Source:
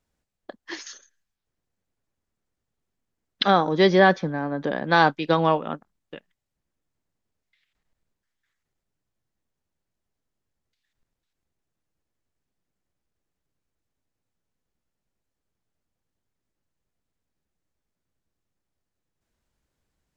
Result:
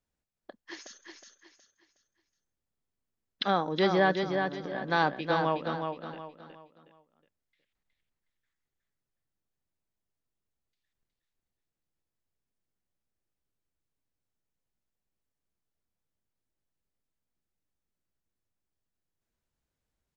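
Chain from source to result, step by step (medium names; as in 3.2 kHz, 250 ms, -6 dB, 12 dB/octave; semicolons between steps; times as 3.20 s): 4.21–4.75 s: compression, threshold -29 dBFS, peak gain reduction 7.5 dB; on a send: feedback delay 366 ms, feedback 34%, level -5.5 dB; on the sum: trim -8.5 dB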